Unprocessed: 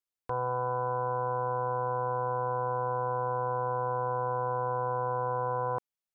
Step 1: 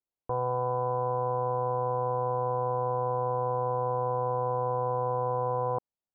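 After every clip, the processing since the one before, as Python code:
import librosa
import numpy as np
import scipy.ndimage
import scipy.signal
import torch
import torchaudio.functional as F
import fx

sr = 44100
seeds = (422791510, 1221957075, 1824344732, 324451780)

y = scipy.signal.sosfilt(scipy.signal.butter(4, 1000.0, 'lowpass', fs=sr, output='sos'), x)
y = y * 10.0 ** (3.0 / 20.0)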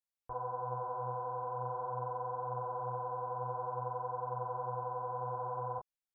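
y = fx.peak_eq(x, sr, hz=280.0, db=-13.5, octaves=2.4)
y = fx.detune_double(y, sr, cents=38)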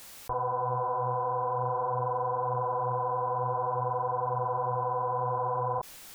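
y = fx.env_flatten(x, sr, amount_pct=70)
y = y * 10.0 ** (7.0 / 20.0)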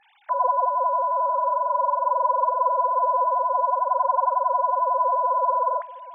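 y = fx.sine_speech(x, sr)
y = y + 10.0 ** (-18.0 / 20.0) * np.pad(y, (int(834 * sr / 1000.0), 0))[:len(y)]
y = y * 10.0 ** (8.0 / 20.0)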